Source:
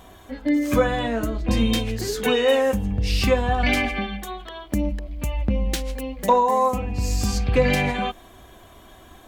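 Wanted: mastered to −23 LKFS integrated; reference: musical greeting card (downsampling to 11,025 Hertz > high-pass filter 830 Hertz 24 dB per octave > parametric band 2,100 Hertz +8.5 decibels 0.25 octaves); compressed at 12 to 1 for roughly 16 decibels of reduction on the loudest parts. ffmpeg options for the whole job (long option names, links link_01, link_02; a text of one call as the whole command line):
ffmpeg -i in.wav -af "acompressor=threshold=-30dB:ratio=12,aresample=11025,aresample=44100,highpass=frequency=830:width=0.5412,highpass=frequency=830:width=1.3066,equalizer=frequency=2100:width_type=o:width=0.25:gain=8.5,volume=15.5dB" out.wav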